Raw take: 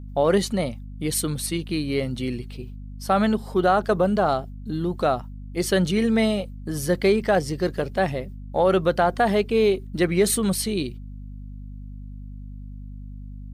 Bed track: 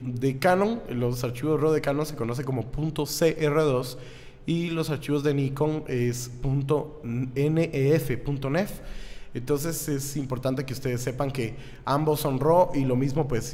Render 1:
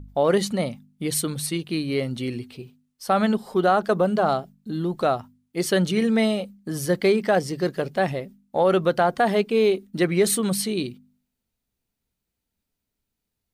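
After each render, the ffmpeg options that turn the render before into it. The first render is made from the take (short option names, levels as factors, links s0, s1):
-af "bandreject=f=50:t=h:w=4,bandreject=f=100:t=h:w=4,bandreject=f=150:t=h:w=4,bandreject=f=200:t=h:w=4,bandreject=f=250:t=h:w=4"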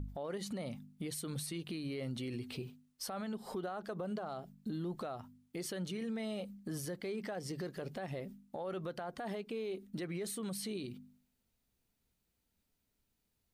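-af "acompressor=threshold=0.0282:ratio=4,alimiter=level_in=2.66:limit=0.0631:level=0:latency=1:release=106,volume=0.376"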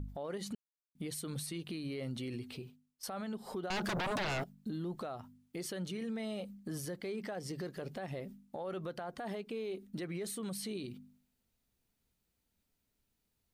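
-filter_complex "[0:a]asettb=1/sr,asplit=3[s0][s1][s2];[s0]atrim=end=3.704[s3];[s1]atrim=start=3.7:end=4.44,asetpts=PTS-STARTPTS,afade=t=in:d=0.004:c=qsin,afade=t=out:st=0.736:d=0.004:c=qsin,aeval=exprs='0.0251*sin(PI/2*3.98*val(0)/0.0251)':c=same[s4];[s2]atrim=start=4.436[s5];[s3][s4]acrossfade=d=0.004:c1=hsin:c2=qsin[s6];[s6][s5]acrossfade=d=0.004:c1=qsin:c2=hsin,asplit=4[s7][s8][s9][s10];[s7]atrim=end=0.55,asetpts=PTS-STARTPTS,afade=t=out:st=0.546:d=0.004:c=hsin[s11];[s8]atrim=start=0.55:end=0.95,asetpts=PTS-STARTPTS,volume=0[s12];[s9]atrim=start=0.95:end=3.03,asetpts=PTS-STARTPTS,afade=t=in:d=0.004:c=hsin,afade=t=out:st=1.37:d=0.71:silence=0.223872[s13];[s10]atrim=start=3.03,asetpts=PTS-STARTPTS,afade=t=in:d=0.004:c=hsin:silence=0.223872[s14];[s11][s12][s13][s14]concat=n=4:v=0:a=1"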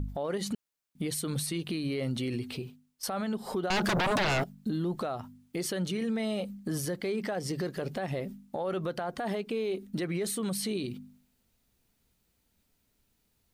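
-af "volume=2.51"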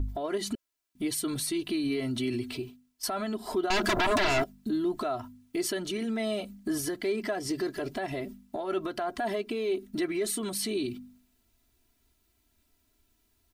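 -af "bandreject=f=550:w=12,aecho=1:1:3:0.83"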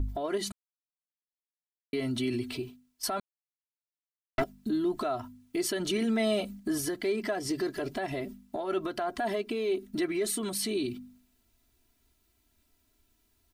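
-filter_complex "[0:a]asplit=7[s0][s1][s2][s3][s4][s5][s6];[s0]atrim=end=0.52,asetpts=PTS-STARTPTS,afade=t=out:st=0.516:d=0.004:c=hsin[s7];[s1]atrim=start=0.52:end=1.93,asetpts=PTS-STARTPTS,volume=0[s8];[s2]atrim=start=1.93:end=3.2,asetpts=PTS-STARTPTS,afade=t=in:d=0.004:c=hsin,afade=t=out:st=1.266:d=0.004:c=hsin[s9];[s3]atrim=start=3.2:end=4.38,asetpts=PTS-STARTPTS,volume=0[s10];[s4]atrim=start=4.38:end=5.802,asetpts=PTS-STARTPTS,afade=t=in:d=0.004:c=hsin[s11];[s5]atrim=start=5.798:end=6.602,asetpts=PTS-STARTPTS,volume=1.5[s12];[s6]atrim=start=6.598[s13];[s7][s8][s9][s10][s11]concat=n=5:v=0:a=1[s14];[s14][s12]acrossfade=d=0.004:c1=hsin:c2=hsin[s15];[s15][s13]acrossfade=d=0.004:c1=hsin:c2=hsin"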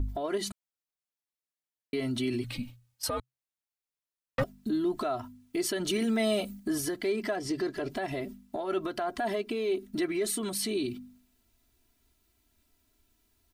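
-filter_complex "[0:a]asettb=1/sr,asplit=3[s0][s1][s2];[s0]atrim=end=2.444[s3];[s1]atrim=start=2.44:end=4.44,asetpts=PTS-STARTPTS,afade=t=in:d=0.004:c=qsin,afade=t=out:st=1.996:d=0.004:c=qsin,afreqshift=-130[s4];[s2]atrim=start=4.436[s5];[s3][s4]acrossfade=d=0.004:c1=hsin:c2=qsin[s6];[s6][s5]acrossfade=d=0.004:c1=qsin:c2=hsin,asettb=1/sr,asplit=3[s7][s8][s9];[s7]atrim=end=5.884[s10];[s8]atrim=start=5.88:end=6.65,asetpts=PTS-STARTPTS,afade=t=in:d=0.004:c=qsin,afade=t=out:st=0.766:d=0.004:c=qsin,highshelf=f=9100:g=8.5[s11];[s9]atrim=start=6.646[s12];[s10][s11]acrossfade=d=0.004:c1=hsin:c2=qsin[s13];[s13][s12]acrossfade=d=0.004:c1=qsin:c2=hsin,asettb=1/sr,asplit=3[s14][s15][s16];[s14]atrim=end=7.364[s17];[s15]atrim=start=7.36:end=7.9,asetpts=PTS-STARTPTS,afade=t=in:d=0.004:c=qsin,afade=t=out:st=0.536:d=0.004:c=qsin,highshelf=f=9800:g=-11.5[s18];[s16]atrim=start=7.896[s19];[s17][s18]acrossfade=d=0.004:c1=hsin:c2=qsin[s20];[s20][s19]acrossfade=d=0.004:c1=qsin:c2=hsin"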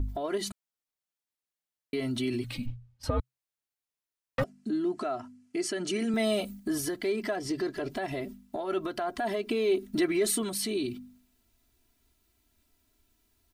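-filter_complex "[0:a]asplit=3[s0][s1][s2];[s0]afade=t=out:st=2.65:d=0.02[s3];[s1]aemphasis=mode=reproduction:type=riaa,afade=t=in:st=2.65:d=0.02,afade=t=out:st=3.19:d=0.02[s4];[s2]afade=t=in:st=3.19:d=0.02[s5];[s3][s4][s5]amix=inputs=3:normalize=0,asettb=1/sr,asplit=3[s6][s7][s8];[s6]atrim=end=4.444[s9];[s7]atrim=start=4.44:end=6.14,asetpts=PTS-STARTPTS,afade=t=in:d=0.004:c=qsin,afade=t=out:st=1.696:d=0.004:c=qsin,highpass=170,equalizer=f=500:t=q:w=4:g=-3,equalizer=f=990:t=q:w=4:g=-5,equalizer=f=3600:t=q:w=4:g=-9,lowpass=f=9100:w=0.5412,lowpass=f=9100:w=1.3066[s10];[s8]atrim=start=6.136[s11];[s9][s10]acrossfade=d=0.004:c1=hsin:c2=qsin[s12];[s12][s11]acrossfade=d=0.004:c1=qsin:c2=hsin,asplit=3[s13][s14][s15];[s13]atrim=end=9.432[s16];[s14]atrim=start=9.428:end=10.432,asetpts=PTS-STARTPTS,volume=1.5[s17];[s15]atrim=start=10.428[s18];[s16][s17]acrossfade=d=0.004:c1=hsin:c2=hsin[s19];[s19][s18]acrossfade=d=0.004:c1=hsin:c2=hsin"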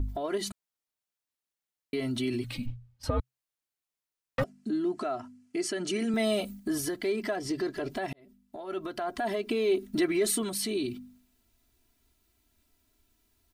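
-filter_complex "[0:a]asplit=2[s0][s1];[s0]atrim=end=8.13,asetpts=PTS-STARTPTS,afade=t=out:st=8.126:d=0.004:c=hsin[s2];[s1]atrim=start=8.13,asetpts=PTS-STARTPTS,afade=t=in:d=1.03[s3];[s2][s3]concat=n=2:v=0:a=1"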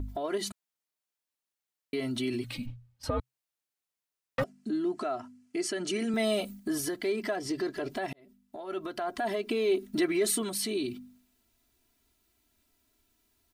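-af "lowshelf=f=120:g=-7"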